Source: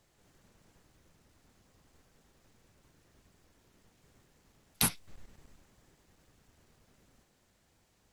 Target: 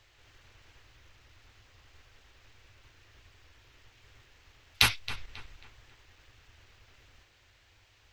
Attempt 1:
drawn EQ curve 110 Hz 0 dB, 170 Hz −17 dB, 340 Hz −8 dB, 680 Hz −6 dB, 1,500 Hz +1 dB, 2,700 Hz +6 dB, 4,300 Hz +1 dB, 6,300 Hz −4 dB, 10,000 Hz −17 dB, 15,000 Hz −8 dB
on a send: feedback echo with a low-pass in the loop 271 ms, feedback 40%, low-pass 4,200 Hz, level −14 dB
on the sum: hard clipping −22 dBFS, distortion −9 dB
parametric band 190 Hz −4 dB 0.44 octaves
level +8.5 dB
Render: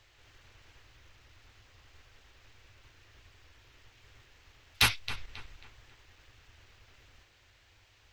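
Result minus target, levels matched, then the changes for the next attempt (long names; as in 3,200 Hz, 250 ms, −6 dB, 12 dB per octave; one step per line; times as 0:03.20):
hard clipping: distortion +18 dB
change: hard clipping −10.5 dBFS, distortion −27 dB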